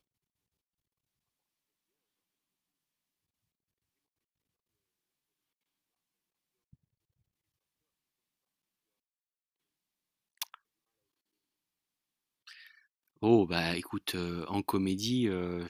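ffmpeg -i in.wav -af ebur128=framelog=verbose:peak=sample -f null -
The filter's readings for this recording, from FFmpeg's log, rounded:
Integrated loudness:
  I:         -31.6 LUFS
  Threshold: -43.2 LUFS
Loudness range:
  LRA:        19.1 LU
  Threshold: -56.9 LUFS
  LRA low:   -51.2 LUFS
  LRA high:  -32.1 LUFS
Sample peak:
  Peak:      -12.8 dBFS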